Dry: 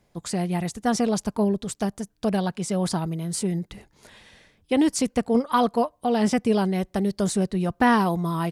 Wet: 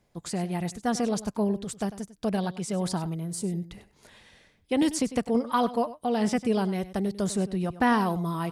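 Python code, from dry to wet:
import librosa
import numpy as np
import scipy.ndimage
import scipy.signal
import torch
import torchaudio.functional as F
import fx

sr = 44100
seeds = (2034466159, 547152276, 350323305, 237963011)

y = fx.peak_eq(x, sr, hz=fx.line((3.19, 4800.0), (3.7, 750.0)), db=-9.5, octaves=1.8, at=(3.19, 3.7), fade=0.02)
y = y + 10.0 ** (-15.5 / 20.0) * np.pad(y, (int(99 * sr / 1000.0), 0))[:len(y)]
y = fx.band_squash(y, sr, depth_pct=70, at=(4.82, 5.29))
y = F.gain(torch.from_numpy(y), -4.0).numpy()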